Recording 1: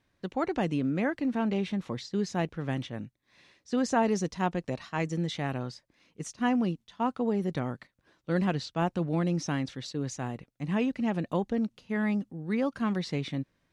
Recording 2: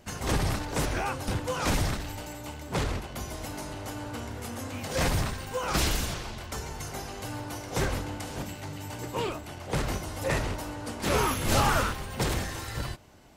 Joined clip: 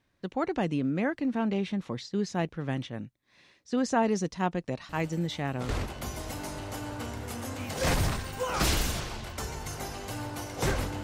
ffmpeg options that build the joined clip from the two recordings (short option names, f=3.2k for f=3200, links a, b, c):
-filter_complex "[1:a]asplit=2[a][b];[0:a]apad=whole_dur=11.03,atrim=end=11.03,atrim=end=5.692[c];[b]atrim=start=2.828:end=8.17[d];[a]atrim=start=2.03:end=2.83,asetpts=PTS-STARTPTS,volume=-12dB,afade=t=in:d=0.004:c=hsin,afade=t=out:st=0.796:d=0.004:c=hsin,adelay=215649S[e];[c][d]acrossfade=d=0.004:c1=hsin:c2=hsin[f];[f][e]amix=inputs=2:normalize=0"